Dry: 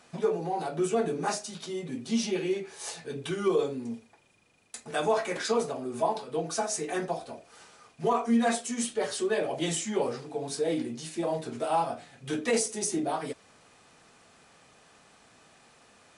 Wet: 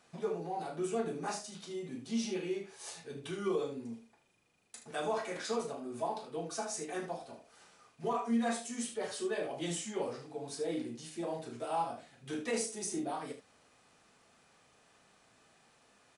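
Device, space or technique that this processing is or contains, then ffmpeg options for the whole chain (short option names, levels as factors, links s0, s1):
slapback doubling: -filter_complex "[0:a]asplit=3[s0][s1][s2];[s1]adelay=35,volume=0.422[s3];[s2]adelay=75,volume=0.299[s4];[s0][s3][s4]amix=inputs=3:normalize=0,volume=0.376"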